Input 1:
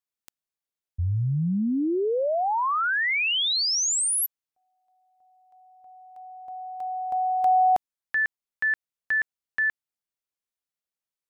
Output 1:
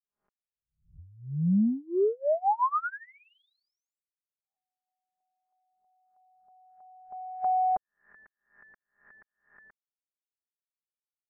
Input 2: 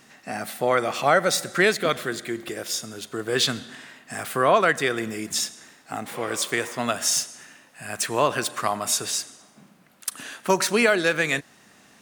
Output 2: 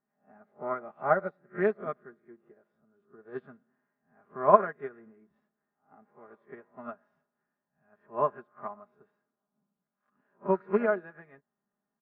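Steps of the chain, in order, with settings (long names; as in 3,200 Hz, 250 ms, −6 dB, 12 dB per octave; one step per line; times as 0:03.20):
peak hold with a rise ahead of every peak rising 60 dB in 0.40 s
low-pass filter 1,400 Hz 24 dB per octave
dynamic equaliser 510 Hz, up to −4 dB, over −36 dBFS, Q 7.9
comb filter 4.9 ms, depth 65%
expander for the loud parts 2.5 to 1, over −32 dBFS
level −1.5 dB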